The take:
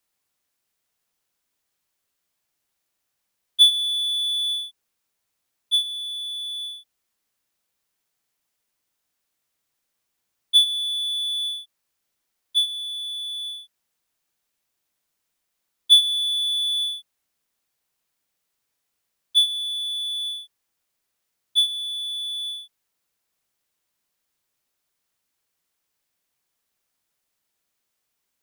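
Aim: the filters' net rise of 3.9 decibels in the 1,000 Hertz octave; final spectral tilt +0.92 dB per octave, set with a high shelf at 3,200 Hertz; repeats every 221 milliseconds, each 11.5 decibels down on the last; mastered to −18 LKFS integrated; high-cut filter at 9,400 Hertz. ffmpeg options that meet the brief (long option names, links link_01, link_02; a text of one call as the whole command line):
ffmpeg -i in.wav -af "lowpass=9400,equalizer=frequency=1000:width_type=o:gain=4,highshelf=frequency=3200:gain=6,aecho=1:1:221|442|663:0.266|0.0718|0.0194" out.wav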